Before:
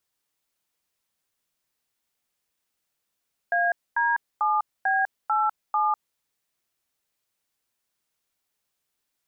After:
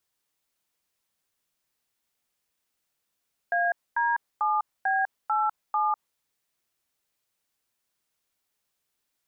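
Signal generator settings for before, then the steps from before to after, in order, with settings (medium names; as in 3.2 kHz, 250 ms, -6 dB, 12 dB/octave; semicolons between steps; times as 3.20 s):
DTMF "AD7B87", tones 200 ms, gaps 244 ms, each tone -22.5 dBFS
dynamic bell 980 Hz, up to +5 dB, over -35 dBFS, Q 1.1; peak limiter -18.5 dBFS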